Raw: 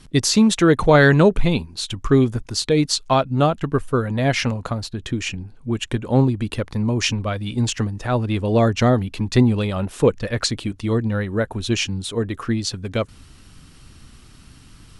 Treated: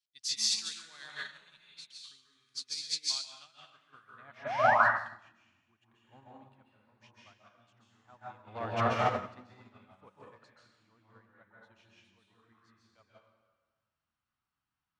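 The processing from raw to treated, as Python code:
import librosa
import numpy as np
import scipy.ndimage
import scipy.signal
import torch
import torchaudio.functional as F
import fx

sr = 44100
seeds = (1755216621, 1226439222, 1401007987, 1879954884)

y = fx.peak_eq(x, sr, hz=440.0, db=-15.0, octaves=1.5)
y = fx.leveller(y, sr, passes=3, at=(8.47, 9.06))
y = fx.filter_sweep_bandpass(y, sr, from_hz=4600.0, to_hz=860.0, start_s=3.19, end_s=4.41, q=1.3)
y = fx.spec_paint(y, sr, seeds[0], shape='rise', start_s=4.45, length_s=0.3, low_hz=560.0, high_hz=2000.0, level_db=-22.0)
y = fx.rev_plate(y, sr, seeds[1], rt60_s=1.5, hf_ratio=0.85, predelay_ms=120, drr_db=-5.5)
y = fx.upward_expand(y, sr, threshold_db=-34.0, expansion=2.5)
y = F.gain(torch.from_numpy(y), -4.0).numpy()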